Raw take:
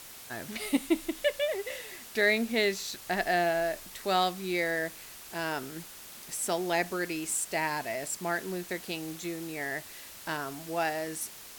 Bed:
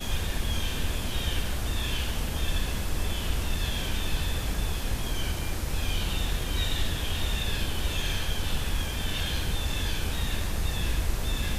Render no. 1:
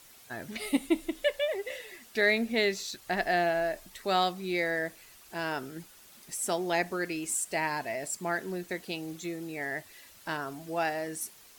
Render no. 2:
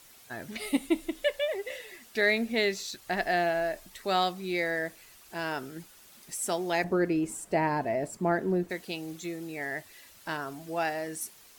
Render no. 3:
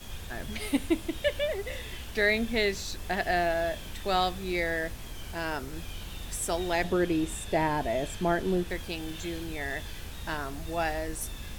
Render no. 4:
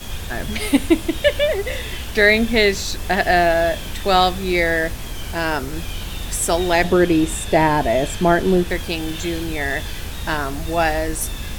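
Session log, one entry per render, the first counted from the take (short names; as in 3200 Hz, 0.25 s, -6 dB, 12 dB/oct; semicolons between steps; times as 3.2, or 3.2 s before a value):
denoiser 9 dB, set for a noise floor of -47 dBFS
6.84–8.7 tilt shelf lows +9.5 dB, about 1400 Hz
add bed -11.5 dB
gain +11.5 dB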